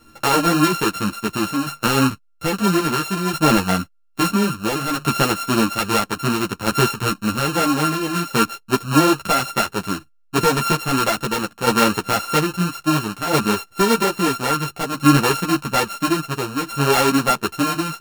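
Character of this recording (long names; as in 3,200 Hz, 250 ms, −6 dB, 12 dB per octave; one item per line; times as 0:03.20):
a buzz of ramps at a fixed pitch in blocks of 32 samples
tremolo saw down 0.6 Hz, depth 55%
a shimmering, thickened sound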